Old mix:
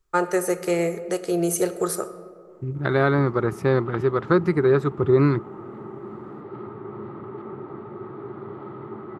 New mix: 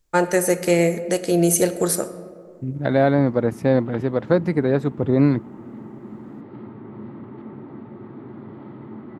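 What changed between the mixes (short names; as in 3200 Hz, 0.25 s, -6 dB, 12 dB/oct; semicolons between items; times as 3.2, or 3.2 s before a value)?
first voice +7.0 dB; second voice: add band shelf 600 Hz +9 dB 1.1 oct; master: add thirty-one-band EQ 250 Hz +12 dB, 400 Hz -10 dB, 800 Hz -4 dB, 1250 Hz -12 dB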